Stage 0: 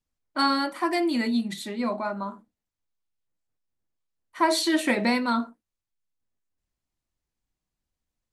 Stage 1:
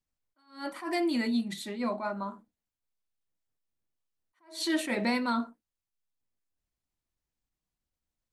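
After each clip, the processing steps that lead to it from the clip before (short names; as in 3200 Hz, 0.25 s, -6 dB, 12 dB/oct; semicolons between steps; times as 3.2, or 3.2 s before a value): in parallel at -1 dB: limiter -18 dBFS, peak gain reduction 8 dB; on the sum: attack slew limiter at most 160 dB/s; gain -9 dB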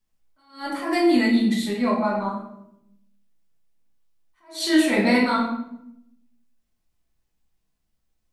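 shoebox room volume 200 m³, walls mixed, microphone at 1.5 m; gain +4 dB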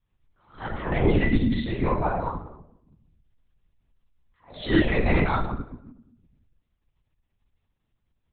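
LPC vocoder at 8 kHz whisper; gain -2 dB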